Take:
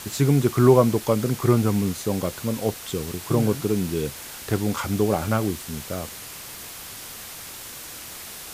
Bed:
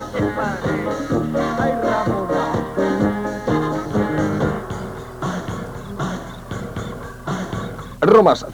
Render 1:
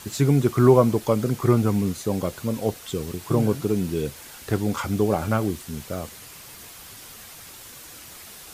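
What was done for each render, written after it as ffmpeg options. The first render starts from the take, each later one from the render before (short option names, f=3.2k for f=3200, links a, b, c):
-af "afftdn=nr=6:nf=-39"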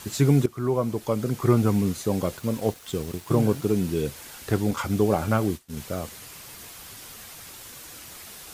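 -filter_complex "[0:a]asettb=1/sr,asplit=3[a][b][c];[a]atrim=end=2.374[d];[b]atrim=start=2.37:end=3.66,asetpts=PTS-STARTPTS,afade=t=in:d=0.004:c=qsin,afade=t=out:st=1.286:d=0.004:c=qsin,aeval=exprs='sgn(val(0))*max(abs(val(0))-0.00473,0)':c=same[e];[c]atrim=start=3.656[f];[d][e]acrossfade=d=0.004:c1=hsin:c2=qsin[g];[g][f]acrossfade=d=0.004:c1=qsin:c2=hsin,asettb=1/sr,asplit=3[h][i][j];[h]atrim=end=4.714[k];[i]atrim=start=4.71:end=5.77,asetpts=PTS-STARTPTS,afade=t=in:d=0.004:c=qsin,afade=t=out:st=1.056:d=0.004:c=qsin,agate=range=-33dB:threshold=-29dB:ratio=3:release=100:detection=peak[l];[j]atrim=start=5.766[m];[k][l]acrossfade=d=0.004:c1=hsin:c2=qsin[n];[n][m]acrossfade=d=0.004:c1=qsin:c2=hsin,asplit=2[o][p];[o]atrim=end=0.46,asetpts=PTS-STARTPTS,afade=t=out:st=0.456:d=0.004:c=hsin:silence=0.149624[q];[p]atrim=start=0.46,asetpts=PTS-STARTPTS,afade=t=in:d=1.2:silence=0.149624[r];[q][r]concat=n=2:v=0:a=1"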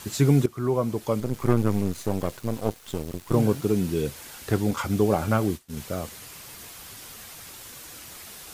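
-filter_complex "[0:a]asettb=1/sr,asplit=3[a][b][c];[a]atrim=end=1.204[d];[b]atrim=start=1.2:end=3.34,asetpts=PTS-STARTPTS,afade=t=in:d=0.004:c=qsin,afade=t=out:st=2.136:d=0.004:c=qsin,aeval=exprs='if(lt(val(0),0),0.251*val(0),val(0))':c=same[e];[c]atrim=start=3.336[f];[d][e]acrossfade=d=0.004:c1=hsin:c2=qsin[g];[g][f]acrossfade=d=0.004:c1=qsin:c2=hsin"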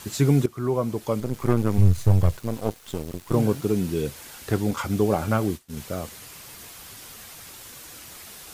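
-filter_complex "[0:a]asettb=1/sr,asplit=3[a][b][c];[a]atrim=end=1.784[d];[b]atrim=start=1.78:end=2.37,asetpts=PTS-STARTPTS,afade=t=in:d=0.004:c=qsin,afade=t=out:st=0.586:d=0.004:c=qsin,lowshelf=f=160:t=q:w=1.5:g=13.5[e];[c]atrim=start=2.366[f];[d][e]acrossfade=d=0.004:c1=hsin:c2=qsin[g];[g][f]acrossfade=d=0.004:c1=qsin:c2=hsin"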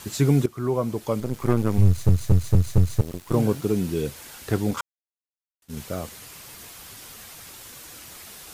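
-filter_complex "[0:a]asplit=8[a][b][c][d][e][f][g][h];[a]atrim=end=2.092[i];[b]atrim=start=1.858:end=2.092[j];[c]atrim=start=1.858:end=2.092[k];[d]atrim=start=1.858:end=2.092[l];[e]atrim=start=1.858:end=2.092[m];[f]atrim=start=3.008:end=4.81,asetpts=PTS-STARTPTS,afade=t=out:st=1.798:d=0.004:c=hsin[n];[g]atrim=start=4.81:end=5.62,asetpts=PTS-STARTPTS,volume=0[o];[h]atrim=start=5.62,asetpts=PTS-STARTPTS,afade=t=in:d=0.004:c=hsin[p];[i][j]acrossfade=d=0.004:c1=hsin:c2=hsin[q];[q][k]acrossfade=d=0.004:c1=hsin:c2=hsin[r];[r][l]acrossfade=d=0.004:c1=hsin:c2=hsin[s];[s][m]acrossfade=d=0.004:c1=hsin:c2=hsin[t];[n][o][p]concat=n=3:v=0:a=1[u];[t][u]acrossfade=d=0.004:c1=hsin:c2=hsin"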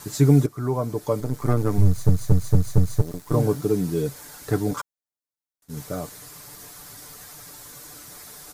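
-af "equalizer=f=2.8k:t=o:w=0.76:g=-9.5,aecho=1:1:6.8:0.55"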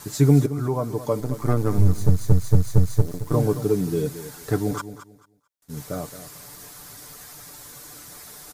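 -af "aecho=1:1:221|442|663:0.224|0.0493|0.0108"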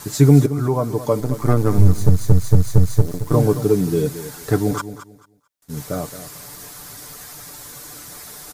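-af "volume=5dB,alimiter=limit=-1dB:level=0:latency=1"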